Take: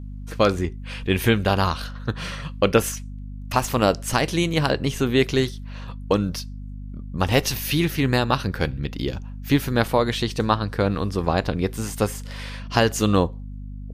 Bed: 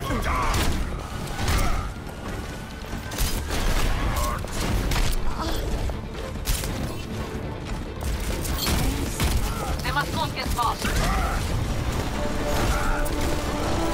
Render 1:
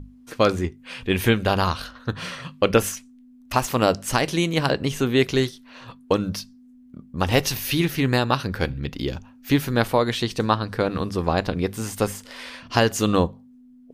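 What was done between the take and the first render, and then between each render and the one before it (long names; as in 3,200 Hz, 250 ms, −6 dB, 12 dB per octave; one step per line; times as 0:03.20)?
mains-hum notches 50/100/150/200 Hz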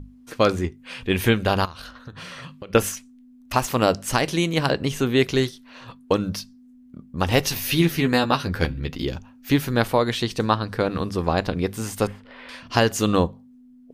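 0:01.65–0:02.75: downward compressor 16 to 1, threshold −33 dBFS
0:07.51–0:09.05: double-tracking delay 12 ms −5 dB
0:12.07–0:12.49: high-frequency loss of the air 430 metres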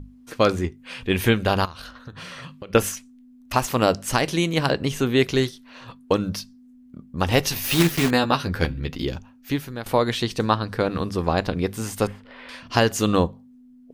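0:07.64–0:08.12: one scale factor per block 3 bits
0:09.14–0:09.86: fade out, to −16 dB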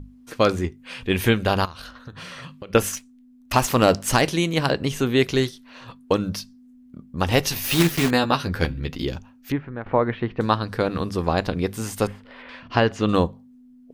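0:02.93–0:04.29: leveller curve on the samples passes 1
0:09.52–0:10.41: low-pass filter 2,100 Hz 24 dB per octave
0:12.42–0:13.09: low-pass filter 3,000 Hz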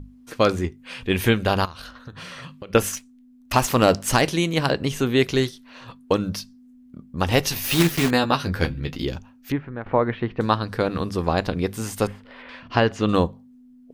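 0:08.39–0:09.01: double-tracking delay 21 ms −12 dB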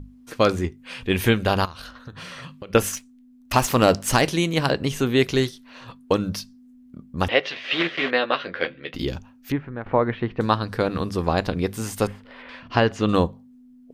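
0:07.28–0:08.94: loudspeaker in its box 430–3,500 Hz, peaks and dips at 540 Hz +5 dB, 880 Hz −8 dB, 2,000 Hz +5 dB, 3,200 Hz +4 dB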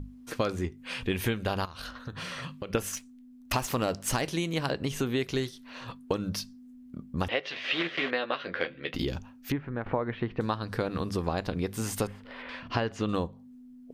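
downward compressor 4 to 1, threshold −27 dBFS, peak gain reduction 13.5 dB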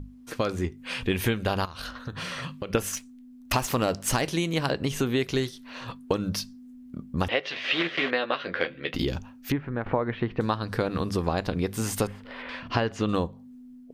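automatic gain control gain up to 3.5 dB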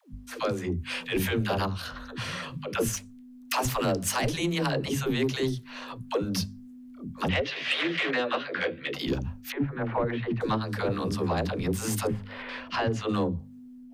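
all-pass dispersion lows, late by 136 ms, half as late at 320 Hz
soft clipping −16.5 dBFS, distortion −22 dB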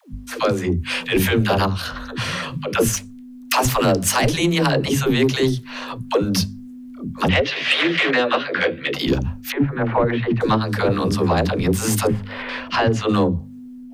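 level +9.5 dB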